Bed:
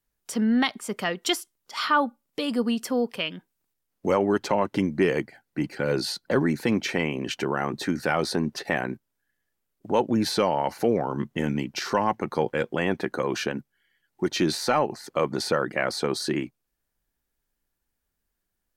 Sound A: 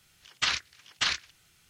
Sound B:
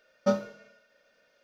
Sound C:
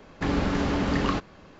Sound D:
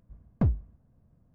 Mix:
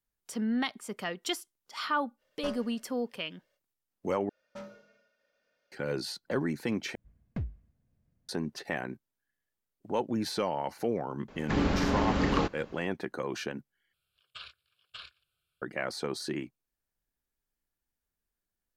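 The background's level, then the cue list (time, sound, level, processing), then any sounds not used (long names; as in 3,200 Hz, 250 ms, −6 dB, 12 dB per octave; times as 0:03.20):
bed −8 dB
0:02.17: mix in B −9 dB, fades 0.05 s + lower of the sound and its delayed copy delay 1.8 ms
0:04.29: overwrite with B −10.5 dB + soft clipping −29.5 dBFS
0:06.95: overwrite with D −10.5 dB + high shelf with overshoot 1,500 Hz +8.5 dB, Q 1.5
0:11.28: mix in C −2.5 dB
0:13.93: overwrite with A −16.5 dB + phaser with its sweep stopped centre 1,300 Hz, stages 8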